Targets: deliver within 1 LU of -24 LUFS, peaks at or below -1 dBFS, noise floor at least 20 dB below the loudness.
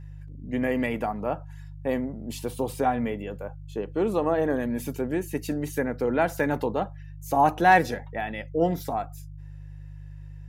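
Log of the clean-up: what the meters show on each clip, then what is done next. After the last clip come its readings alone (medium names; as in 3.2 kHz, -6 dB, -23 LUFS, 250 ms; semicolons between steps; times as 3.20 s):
hum 50 Hz; highest harmonic 150 Hz; hum level -39 dBFS; loudness -27.0 LUFS; peak level -7.5 dBFS; loudness target -24.0 LUFS
-> de-hum 50 Hz, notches 3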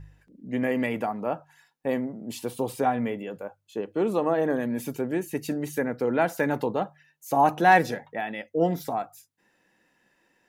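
hum not found; loudness -27.0 LUFS; peak level -7.5 dBFS; loudness target -24.0 LUFS
-> trim +3 dB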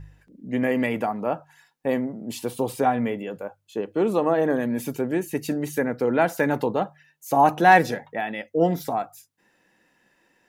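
loudness -24.0 LUFS; peak level -4.5 dBFS; noise floor -68 dBFS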